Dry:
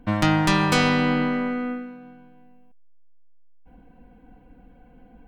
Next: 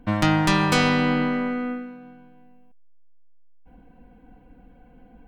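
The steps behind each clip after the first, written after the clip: no audible change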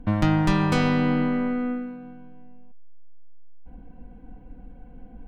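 tilt EQ -2 dB/octave; in parallel at 0 dB: compression, threshold -25 dBFS, peak gain reduction 13.5 dB; on the sum: trim -6.5 dB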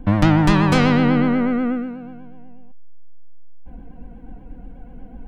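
vibrato 8.2 Hz 76 cents; trim +6 dB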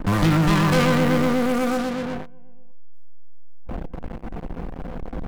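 feedback comb 170 Hz, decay 0.32 s, harmonics all, mix 80%; in parallel at -12 dB: fuzz box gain 50 dB, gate -46 dBFS; on the sum: trim +2 dB

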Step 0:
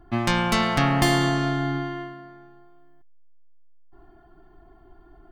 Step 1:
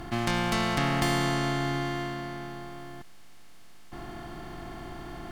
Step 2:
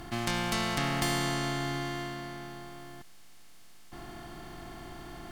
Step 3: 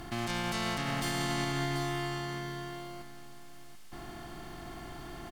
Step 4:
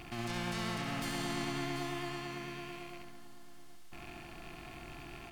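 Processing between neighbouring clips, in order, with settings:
spectral levelling over time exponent 0.4; trim -8.5 dB
treble shelf 3.5 kHz +7 dB; trim -4.5 dB
peak limiter -23.5 dBFS, peak gain reduction 9 dB; delay 737 ms -9.5 dB
rattle on loud lows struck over -48 dBFS, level -34 dBFS; vibrato 9 Hz 33 cents; flutter echo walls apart 11.7 m, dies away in 0.61 s; trim -6 dB

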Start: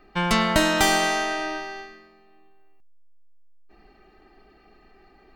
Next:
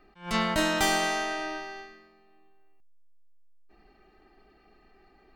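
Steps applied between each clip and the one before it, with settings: attacks held to a fixed rise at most 170 dB/s; trim -5 dB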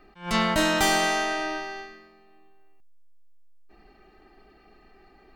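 saturation -17.5 dBFS, distortion -19 dB; trim +4.5 dB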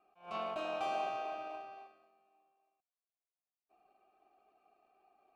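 in parallel at -6 dB: decimation with a swept rate 37×, swing 60% 3.7 Hz; on the sum: vowel filter a; trim -5 dB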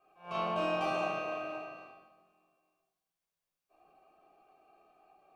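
simulated room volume 1000 m³, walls furnished, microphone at 5.4 m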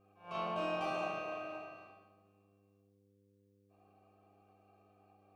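mains buzz 100 Hz, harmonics 5, -66 dBFS -2 dB/octave; trim -4.5 dB

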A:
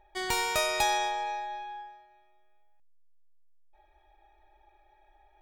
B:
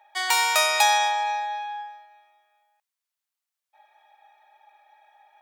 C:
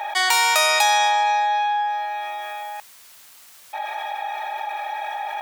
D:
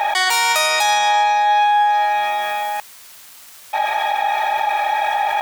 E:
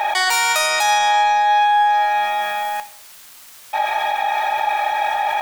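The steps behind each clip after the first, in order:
high-pass 700 Hz 24 dB/octave; trim +8.5 dB
level flattener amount 70%
waveshaping leveller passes 1; peak limiter -15.5 dBFS, peak gain reduction 10.5 dB; trim +6 dB
reverberation RT60 0.55 s, pre-delay 5 ms, DRR 11 dB; trim -1 dB

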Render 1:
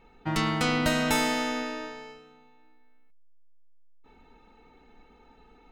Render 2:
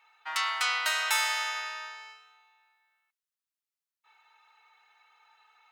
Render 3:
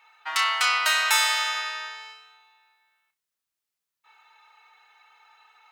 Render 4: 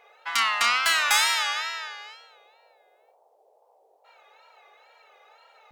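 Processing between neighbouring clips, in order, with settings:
high-pass 1 kHz 24 dB/octave; trim +1.5 dB
flutter echo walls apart 5.4 m, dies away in 0.2 s; trim +5.5 dB
band noise 440–860 Hz -62 dBFS; Chebyshev shaper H 4 -29 dB, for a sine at -6.5 dBFS; wow and flutter 110 cents

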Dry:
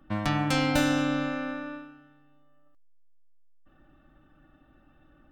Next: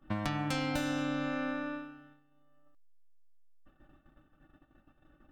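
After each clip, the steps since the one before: compression 6:1, threshold -30 dBFS, peak gain reduction 10.5 dB; gate -57 dBFS, range -11 dB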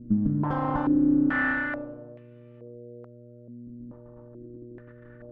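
comb filter that takes the minimum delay 0.62 ms; mains buzz 120 Hz, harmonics 5, -55 dBFS -3 dB/octave; step-sequenced low-pass 2.3 Hz 240–2500 Hz; trim +6 dB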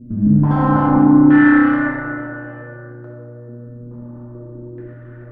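plate-style reverb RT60 2.8 s, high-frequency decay 0.4×, DRR -7 dB; trim +2 dB

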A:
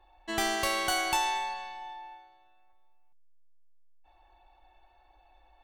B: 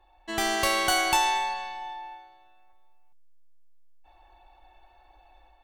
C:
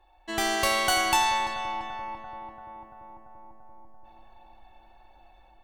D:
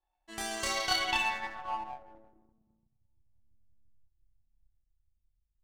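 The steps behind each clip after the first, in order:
level rider gain up to 5 dB
filtered feedback delay 340 ms, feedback 77%, low-pass 1.7 kHz, level -9 dB
chorus voices 2, 0.55 Hz, delay 29 ms, depth 2.4 ms; low-pass sweep 10 kHz -> 100 Hz, 0.50–3.09 s; power-law waveshaper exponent 1.4; trim -2 dB

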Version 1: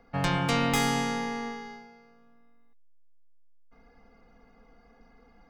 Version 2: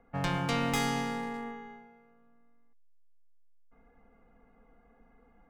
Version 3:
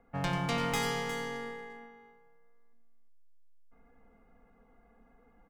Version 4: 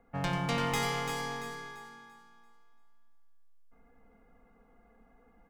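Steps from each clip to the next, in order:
local Wiener filter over 9 samples; trim -4 dB
multi-tap echo 92/358 ms -9/-10 dB; trim -1.5 dB
thinning echo 340 ms, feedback 34%, high-pass 200 Hz, level -7 dB

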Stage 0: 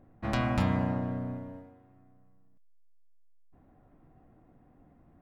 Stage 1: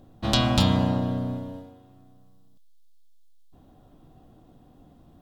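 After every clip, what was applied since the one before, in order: resonant high shelf 2.7 kHz +8.5 dB, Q 3; trim +6.5 dB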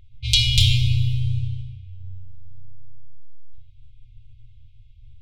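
level-controlled noise filter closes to 2.6 kHz, open at -21 dBFS; simulated room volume 1800 m³, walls mixed, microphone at 1.8 m; FFT band-reject 120–2100 Hz; trim +6 dB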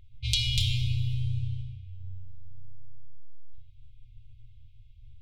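compression 2.5:1, threshold -21 dBFS, peak gain reduction 7 dB; trim -4 dB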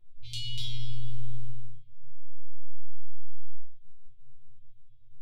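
chord resonator A#2 fifth, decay 0.27 s; simulated room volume 160 m³, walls furnished, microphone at 0.95 m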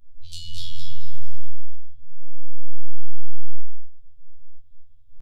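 static phaser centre 820 Hz, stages 4; on a send: feedback delay 215 ms, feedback 29%, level -6.5 dB; on the sum: robot voice 84.1 Hz; trim +6.5 dB

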